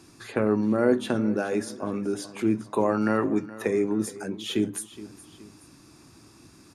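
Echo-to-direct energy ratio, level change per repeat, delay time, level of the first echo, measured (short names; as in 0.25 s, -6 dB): -16.0 dB, -6.5 dB, 0.42 s, -17.0 dB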